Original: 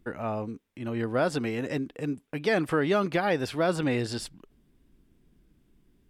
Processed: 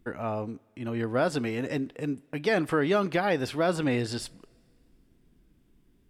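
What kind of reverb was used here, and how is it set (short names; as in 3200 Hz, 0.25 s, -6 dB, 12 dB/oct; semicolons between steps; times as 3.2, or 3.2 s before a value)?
two-slope reverb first 0.28 s, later 2.3 s, from -18 dB, DRR 19 dB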